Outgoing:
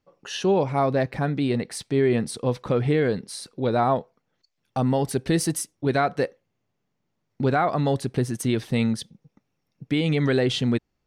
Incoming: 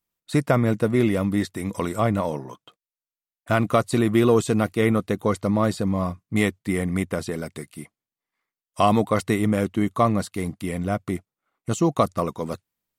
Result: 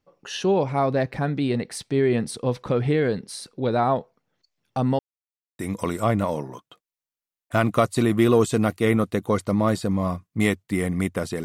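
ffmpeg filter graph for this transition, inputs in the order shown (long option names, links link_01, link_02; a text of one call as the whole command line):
ffmpeg -i cue0.wav -i cue1.wav -filter_complex "[0:a]apad=whole_dur=11.44,atrim=end=11.44,asplit=2[link_01][link_02];[link_01]atrim=end=4.99,asetpts=PTS-STARTPTS,afade=type=out:start_time=4.986:duration=0.004:curve=hsin[link_03];[link_02]atrim=start=4.99:end=5.59,asetpts=PTS-STARTPTS,volume=0[link_04];[1:a]atrim=start=1.55:end=7.4,asetpts=PTS-STARTPTS,afade=type=in:duration=0.004:curve=hsin[link_05];[link_03][link_04][link_05]concat=n=3:v=0:a=1" out.wav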